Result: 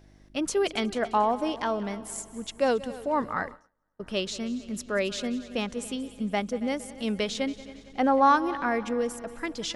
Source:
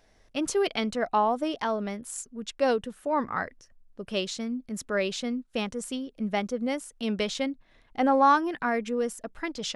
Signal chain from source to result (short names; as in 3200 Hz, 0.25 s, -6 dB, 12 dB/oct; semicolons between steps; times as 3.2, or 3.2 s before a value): buzz 50 Hz, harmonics 7, -56 dBFS -4 dB/oct; multi-head echo 92 ms, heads second and third, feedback 50%, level -18 dB; 3.22–4.01 gate -39 dBFS, range -30 dB